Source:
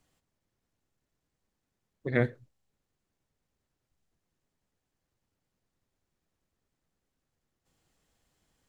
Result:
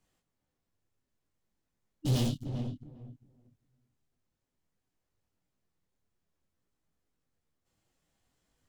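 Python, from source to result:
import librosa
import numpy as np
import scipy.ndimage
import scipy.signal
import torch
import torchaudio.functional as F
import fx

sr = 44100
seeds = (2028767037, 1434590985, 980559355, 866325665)

p1 = fx.fuzz(x, sr, gain_db=46.0, gate_db=-53.0)
p2 = x + (p1 * librosa.db_to_amplitude(-3.0))
p3 = fx.spec_repair(p2, sr, seeds[0], start_s=2.03, length_s=0.38, low_hz=320.0, high_hz=2800.0, source='before')
p4 = np.clip(p3, -10.0 ** (-22.5 / 20.0), 10.0 ** (-22.5 / 20.0))
p5 = p4 + fx.echo_filtered(p4, sr, ms=399, feedback_pct=19, hz=1000.0, wet_db=-5.5, dry=0)
y = fx.detune_double(p5, sr, cents=20)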